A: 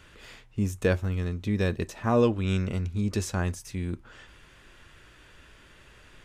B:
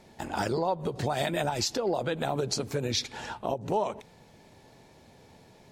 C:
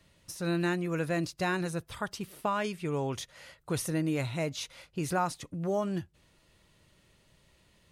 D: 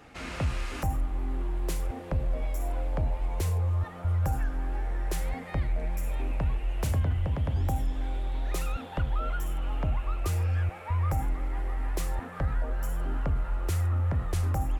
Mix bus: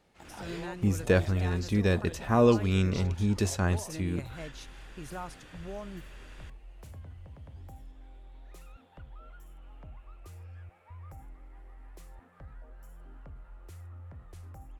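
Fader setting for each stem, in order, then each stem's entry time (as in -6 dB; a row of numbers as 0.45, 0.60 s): +0.5, -16.0, -11.0, -19.5 dB; 0.25, 0.00, 0.00, 0.00 s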